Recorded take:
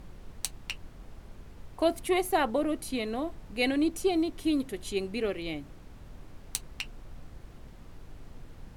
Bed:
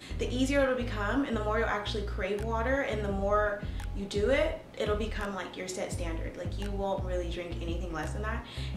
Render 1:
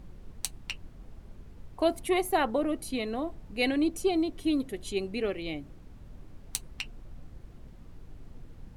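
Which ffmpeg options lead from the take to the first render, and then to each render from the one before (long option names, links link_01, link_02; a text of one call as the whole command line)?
ffmpeg -i in.wav -af "afftdn=noise_reduction=6:noise_floor=-50" out.wav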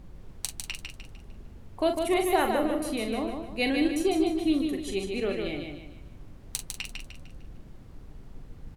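ffmpeg -i in.wav -filter_complex "[0:a]asplit=2[link_01][link_02];[link_02]adelay=41,volume=-7.5dB[link_03];[link_01][link_03]amix=inputs=2:normalize=0,asplit=2[link_04][link_05];[link_05]aecho=0:1:151|302|453|604|755:0.562|0.214|0.0812|0.0309|0.0117[link_06];[link_04][link_06]amix=inputs=2:normalize=0" out.wav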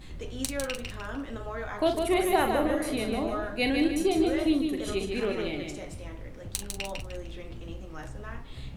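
ffmpeg -i in.wav -i bed.wav -filter_complex "[1:a]volume=-7dB[link_01];[0:a][link_01]amix=inputs=2:normalize=0" out.wav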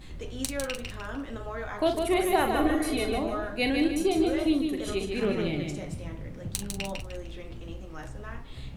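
ffmpeg -i in.wav -filter_complex "[0:a]asettb=1/sr,asplit=3[link_01][link_02][link_03];[link_01]atrim=end=2.554[link_04];[link_02]atrim=start=2.55:end=3.18,asetpts=PTS-STARTPTS,afade=type=in:duration=0.004:curve=qsin,afade=type=out:start_time=0.626:duration=0.004:curve=qsin,aecho=1:1:2.7:0.8,atrim=end_sample=27783[link_05];[link_03]atrim=start=3.176[link_06];[link_04][link_05]acrossfade=duration=0.004:curve1=hsin:curve2=qsin[link_07];[link_07][link_06]acrossfade=duration=0.004:curve1=qsin:curve2=hsin,asettb=1/sr,asplit=3[link_08][link_09][link_10];[link_08]atrim=end=3.884[link_11];[link_09]atrim=start=3.88:end=4.58,asetpts=PTS-STARTPTS,afade=type=in:duration=0.004:curve=qsin,afade=type=out:start_time=0.696:duration=0.004:curve=qsin,bandreject=frequency=1900:width=12[link_12];[link_10]atrim=start=4.576[link_13];[link_11][link_12]acrossfade=duration=0.004:curve1=hsin:curve2=qsin[link_14];[link_14][link_13]acrossfade=duration=0.004:curve1=qsin:curve2=hsin,asettb=1/sr,asplit=3[link_15][link_16][link_17];[link_15]atrim=end=5.214[link_18];[link_16]atrim=start=5.21:end=6.96,asetpts=PTS-STARTPTS,afade=type=in:duration=0.004:curve=qsin,afade=type=out:start_time=1.746:duration=0.004:curve=qsin,equalizer=frequency=160:width_type=o:width=1.1:gain=10.5[link_19];[link_17]atrim=start=6.956[link_20];[link_18][link_19]acrossfade=duration=0.004:curve1=hsin:curve2=qsin[link_21];[link_21][link_20]acrossfade=duration=0.004:curve1=qsin:curve2=hsin" out.wav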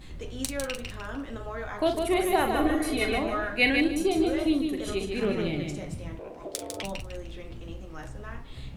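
ffmpeg -i in.wav -filter_complex "[0:a]asettb=1/sr,asplit=3[link_01][link_02][link_03];[link_01]atrim=end=3.014[link_04];[link_02]atrim=start=3.01:end=3.81,asetpts=PTS-STARTPTS,afade=type=in:duration=0.004:curve=qsin,afade=type=out:start_time=0.796:duration=0.004:curve=qsin,equalizer=frequency=2000:width_type=o:width=1.2:gain=9.5[link_05];[link_03]atrim=start=3.806[link_06];[link_04][link_05]acrossfade=duration=0.004:curve1=hsin:curve2=qsin[link_07];[link_07][link_06]acrossfade=duration=0.004:curve1=qsin:curve2=hsin,asettb=1/sr,asplit=3[link_08][link_09][link_10];[link_08]atrim=end=6.194[link_11];[link_09]atrim=start=6.19:end=6.83,asetpts=PTS-STARTPTS,afade=type=in:duration=0.004:curve=qsin,afade=type=out:start_time=0.636:duration=0.004:curve=qsin,aeval=exprs='val(0)*sin(2*PI*490*n/s)':channel_layout=same[link_12];[link_10]atrim=start=6.826[link_13];[link_11][link_12]acrossfade=duration=0.004:curve1=hsin:curve2=qsin[link_14];[link_14][link_13]acrossfade=duration=0.004:curve1=qsin:curve2=hsin" out.wav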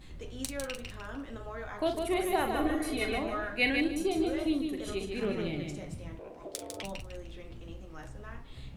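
ffmpeg -i in.wav -af "volume=-5dB" out.wav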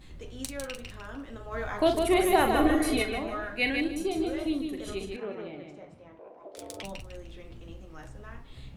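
ffmpeg -i in.wav -filter_complex "[0:a]asplit=3[link_01][link_02][link_03];[link_01]afade=type=out:start_time=1.51:duration=0.02[link_04];[link_02]acontrast=72,afade=type=in:start_time=1.51:duration=0.02,afade=type=out:start_time=3.01:duration=0.02[link_05];[link_03]afade=type=in:start_time=3.01:duration=0.02[link_06];[link_04][link_05][link_06]amix=inputs=3:normalize=0,asettb=1/sr,asplit=3[link_07][link_08][link_09];[link_07]atrim=end=5.164[link_10];[link_08]atrim=start=5.16:end=6.57,asetpts=PTS-STARTPTS,afade=type=in:duration=0.004:curve=qsin,afade=type=out:start_time=1.406:duration=0.004:curve=qsin,bandpass=frequency=790:width_type=q:width=0.84[link_11];[link_09]atrim=start=6.566[link_12];[link_10][link_11]acrossfade=duration=0.004:curve1=hsin:curve2=qsin[link_13];[link_13][link_12]acrossfade=duration=0.004:curve1=qsin:curve2=hsin" out.wav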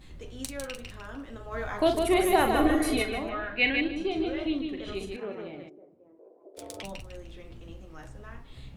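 ffmpeg -i in.wav -filter_complex "[0:a]asettb=1/sr,asplit=3[link_01][link_02][link_03];[link_01]atrim=end=3.294[link_04];[link_02]atrim=start=3.29:end=4.95,asetpts=PTS-STARTPTS,afade=type=in:duration=0.004:curve=qsin,afade=type=out:start_time=1.656:duration=0.004:curve=qsin,lowpass=frequency=3100:width_type=q:width=1.6[link_05];[link_03]atrim=start=4.946[link_06];[link_04][link_05]acrossfade=duration=0.004:curve1=hsin:curve2=qsin[link_07];[link_07][link_06]acrossfade=duration=0.004:curve1=qsin:curve2=hsin,asplit=3[link_08][link_09][link_10];[link_08]afade=type=out:start_time=5.68:duration=0.02[link_11];[link_09]bandpass=frequency=380:width_type=q:width=2.8,afade=type=in:start_time=5.68:duration=0.02,afade=type=out:start_time=6.56:duration=0.02[link_12];[link_10]afade=type=in:start_time=6.56:duration=0.02[link_13];[link_11][link_12][link_13]amix=inputs=3:normalize=0" out.wav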